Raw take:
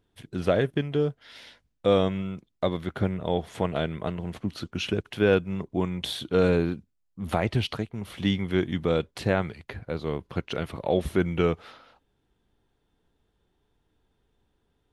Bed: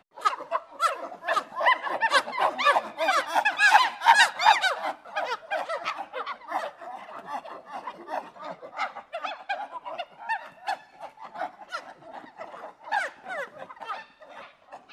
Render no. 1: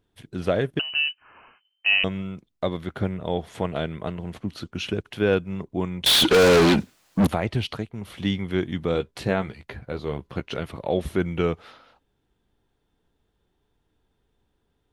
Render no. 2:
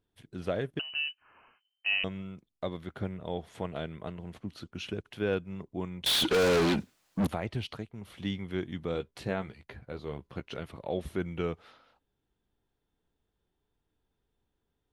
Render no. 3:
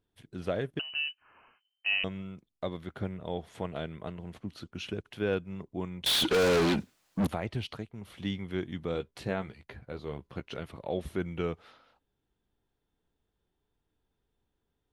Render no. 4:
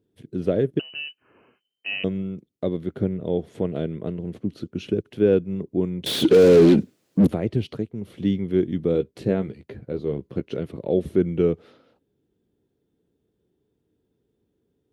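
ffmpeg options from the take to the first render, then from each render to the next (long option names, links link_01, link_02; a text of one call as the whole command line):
ffmpeg -i in.wav -filter_complex "[0:a]asettb=1/sr,asplit=3[link_01][link_02][link_03];[link_01]atrim=end=0.794[link_04];[link_02]atrim=start=0.79:end=2.04,asetpts=PTS-STARTPTS,afade=type=in:duration=0.004:curve=qsin,afade=type=out:start_time=1.246:duration=0.004:curve=qsin,lowpass=frequency=2600:width_type=q:width=0.5098,lowpass=frequency=2600:width_type=q:width=0.6013,lowpass=frequency=2600:width_type=q:width=0.9,lowpass=frequency=2600:width_type=q:width=2.563,afreqshift=-3100[link_05];[link_03]atrim=start=2.036[link_06];[link_04][link_05]acrossfade=duration=0.004:curve1=hsin:curve2=qsin[link_07];[link_07][link_06]acrossfade=duration=0.004:curve1=qsin:curve2=hsin,asettb=1/sr,asplit=3[link_08][link_09][link_10];[link_08]atrim=end=6.064[link_11];[link_09]atrim=start=6.06:end=7.27,asetpts=PTS-STARTPTS,afade=type=in:duration=0.004:curve=qsin,afade=type=out:start_time=1.206:duration=0.004:curve=qsin,asplit=2[link_12][link_13];[link_13]highpass=frequency=720:poles=1,volume=41dB,asoftclip=type=tanh:threshold=-9dB[link_14];[link_12][link_14]amix=inputs=2:normalize=0,lowpass=frequency=6100:poles=1,volume=-6dB[link_15];[link_10]atrim=start=7.266[link_16];[link_11][link_15]acrossfade=duration=0.004:curve1=hsin:curve2=qsin[link_17];[link_17][link_16]acrossfade=duration=0.004:curve1=qsin:curve2=hsin,asettb=1/sr,asplit=3[link_18][link_19][link_20];[link_18]atrim=end=8.934[link_21];[link_19]atrim=start=8.93:end=10.6,asetpts=PTS-STARTPTS,afade=type=in:duration=0.004:curve=qsin,afade=type=out:start_time=1.666:duration=0.004:curve=qsin,asplit=2[link_22][link_23];[link_23]adelay=15,volume=-8dB[link_24];[link_22][link_24]amix=inputs=2:normalize=0,atrim=end_sample=73647[link_25];[link_20]atrim=start=10.596[link_26];[link_21][link_25]acrossfade=duration=0.004:curve1=hsin:curve2=qsin[link_27];[link_27][link_26]acrossfade=duration=0.004:curve1=qsin:curve2=hsin" out.wav
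ffmpeg -i in.wav -af "volume=-9dB" out.wav
ffmpeg -i in.wav -af anull out.wav
ffmpeg -i in.wav -af "highpass=110,lowshelf=frequency=610:width_type=q:width=1.5:gain=11.5" out.wav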